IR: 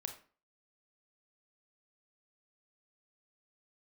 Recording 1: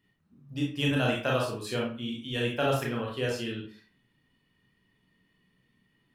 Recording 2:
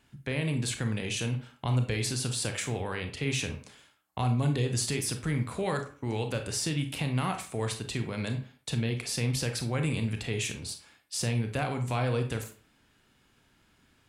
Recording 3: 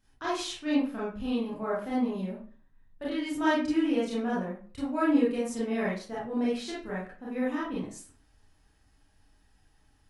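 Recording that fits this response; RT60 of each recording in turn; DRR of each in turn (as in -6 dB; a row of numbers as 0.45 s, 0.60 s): 2; 0.40 s, 0.40 s, 0.40 s; -3.0 dB, 5.5 dB, -8.0 dB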